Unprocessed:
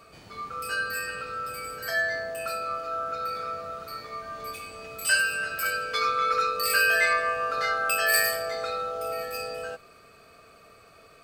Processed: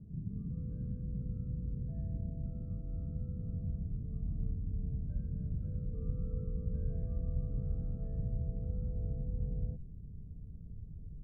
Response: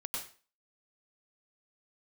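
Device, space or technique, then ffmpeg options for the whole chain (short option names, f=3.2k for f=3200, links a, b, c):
the neighbour's flat through the wall: -af "lowpass=f=200:w=0.5412,lowpass=f=200:w=1.3066,equalizer=f=160:t=o:w=0.66:g=5,asubboost=boost=5:cutoff=74,volume=13dB"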